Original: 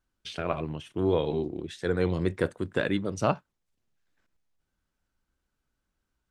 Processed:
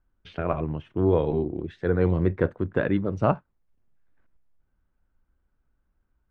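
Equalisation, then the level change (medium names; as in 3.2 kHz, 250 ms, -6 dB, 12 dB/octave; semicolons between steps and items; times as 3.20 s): low-pass 1.7 kHz 12 dB/octave; bass shelf 79 Hz +10 dB; +3.0 dB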